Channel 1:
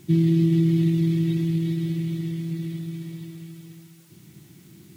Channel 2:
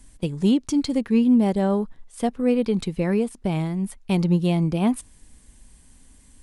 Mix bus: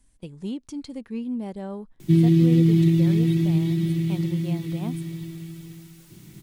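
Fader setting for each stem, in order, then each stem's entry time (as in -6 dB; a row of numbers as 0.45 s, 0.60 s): +2.5 dB, -12.5 dB; 2.00 s, 0.00 s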